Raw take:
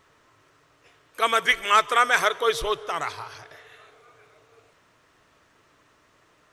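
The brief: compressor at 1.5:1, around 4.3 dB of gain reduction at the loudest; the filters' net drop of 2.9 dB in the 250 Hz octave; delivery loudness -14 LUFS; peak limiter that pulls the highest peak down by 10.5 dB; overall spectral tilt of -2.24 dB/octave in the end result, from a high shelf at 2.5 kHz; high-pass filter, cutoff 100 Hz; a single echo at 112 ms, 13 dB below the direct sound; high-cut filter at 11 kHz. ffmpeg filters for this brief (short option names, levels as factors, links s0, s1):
-af "highpass=100,lowpass=11000,equalizer=f=250:t=o:g=-4,highshelf=f=2500:g=-7.5,acompressor=threshold=0.0398:ratio=1.5,alimiter=limit=0.075:level=0:latency=1,aecho=1:1:112:0.224,volume=10"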